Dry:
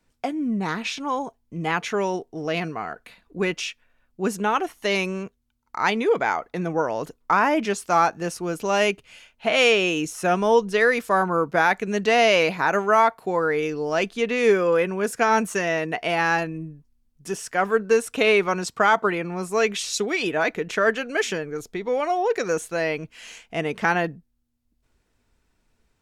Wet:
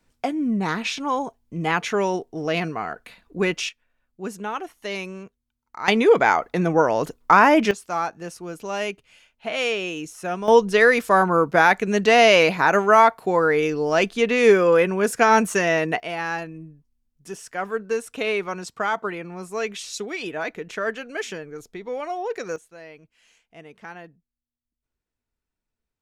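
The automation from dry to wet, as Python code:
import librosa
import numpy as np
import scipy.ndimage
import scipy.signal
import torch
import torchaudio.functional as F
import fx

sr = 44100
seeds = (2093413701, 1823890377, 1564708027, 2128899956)

y = fx.gain(x, sr, db=fx.steps((0.0, 2.0), (3.69, -7.0), (5.88, 5.5), (7.71, -6.5), (10.48, 3.5), (16.0, -6.0), (22.56, -18.0)))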